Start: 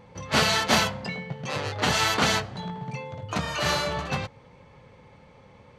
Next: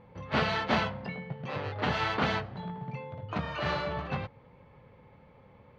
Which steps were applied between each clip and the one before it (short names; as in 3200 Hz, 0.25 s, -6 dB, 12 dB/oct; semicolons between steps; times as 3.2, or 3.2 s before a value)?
air absorption 320 m; gain -3.5 dB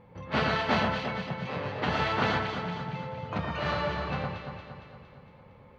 echo with dull and thin repeats by turns 0.115 s, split 1900 Hz, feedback 74%, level -3 dB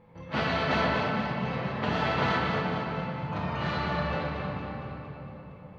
shoebox room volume 220 m³, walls hard, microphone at 0.66 m; gain -3.5 dB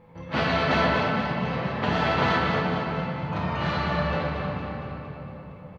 doubler 12 ms -13 dB; gain +3.5 dB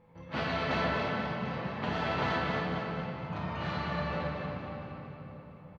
echo 0.281 s -9 dB; gain -8.5 dB